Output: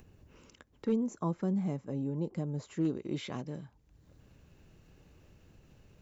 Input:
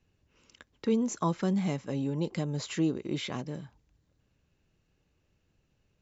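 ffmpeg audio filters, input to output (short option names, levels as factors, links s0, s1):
-af "acompressor=mode=upward:threshold=0.00891:ratio=2.5,asetnsamples=n=441:p=0,asendcmd='0.96 equalizer g -15;2.85 equalizer g -4.5',equalizer=f=3800:t=o:w=2.8:g=-8.5,aeval=exprs='clip(val(0),-1,0.0944)':c=same,volume=0.75"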